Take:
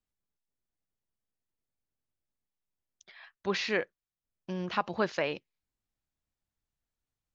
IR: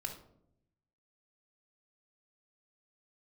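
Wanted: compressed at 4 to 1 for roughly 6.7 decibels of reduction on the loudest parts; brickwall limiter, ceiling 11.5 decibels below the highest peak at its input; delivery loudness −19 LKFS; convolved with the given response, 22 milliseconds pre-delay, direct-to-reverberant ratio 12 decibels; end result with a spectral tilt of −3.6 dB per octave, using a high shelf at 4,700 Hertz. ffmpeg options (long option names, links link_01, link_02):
-filter_complex "[0:a]highshelf=frequency=4700:gain=-5,acompressor=threshold=-32dB:ratio=4,alimiter=level_in=8dB:limit=-24dB:level=0:latency=1,volume=-8dB,asplit=2[link_01][link_02];[1:a]atrim=start_sample=2205,adelay=22[link_03];[link_02][link_03]afir=irnorm=-1:irlink=0,volume=-11.5dB[link_04];[link_01][link_04]amix=inputs=2:normalize=0,volume=24.5dB"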